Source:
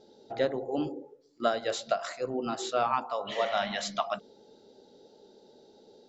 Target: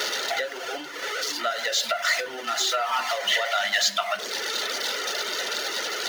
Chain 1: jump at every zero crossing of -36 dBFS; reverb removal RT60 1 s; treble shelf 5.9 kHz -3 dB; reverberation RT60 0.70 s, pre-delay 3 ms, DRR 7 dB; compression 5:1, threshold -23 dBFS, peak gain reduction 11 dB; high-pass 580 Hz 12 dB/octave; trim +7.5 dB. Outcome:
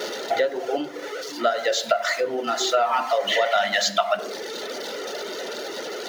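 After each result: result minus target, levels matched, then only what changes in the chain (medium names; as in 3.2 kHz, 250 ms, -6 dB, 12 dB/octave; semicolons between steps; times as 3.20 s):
500 Hz band +7.0 dB; jump at every zero crossing: distortion -7 dB
change: high-pass 1.2 kHz 12 dB/octave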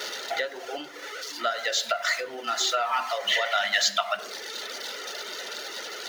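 jump at every zero crossing: distortion -7 dB
change: jump at every zero crossing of -27 dBFS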